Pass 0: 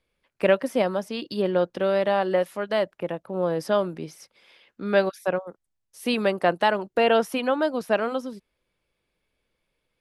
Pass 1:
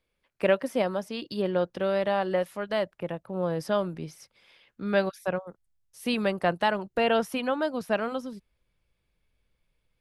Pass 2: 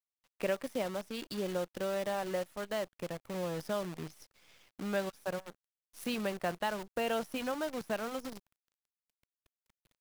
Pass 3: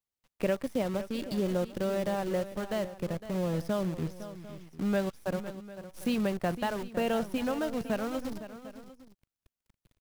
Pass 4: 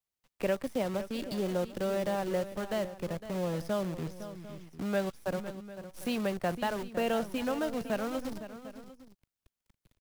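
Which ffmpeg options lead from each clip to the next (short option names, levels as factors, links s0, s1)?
-af "asubboost=boost=3:cutoff=170,volume=0.708"
-af "acompressor=threshold=0.00447:ratio=1.5,acrusher=bits=8:dc=4:mix=0:aa=0.000001"
-af "lowshelf=f=320:g=12,aecho=1:1:508|749:0.224|0.126"
-filter_complex "[0:a]acrossover=split=320|3500[s0][s1][s2];[s0]asoftclip=type=tanh:threshold=0.02[s3];[s2]asplit=2[s4][s5];[s5]adelay=19,volume=0.2[s6];[s4][s6]amix=inputs=2:normalize=0[s7];[s3][s1][s7]amix=inputs=3:normalize=0"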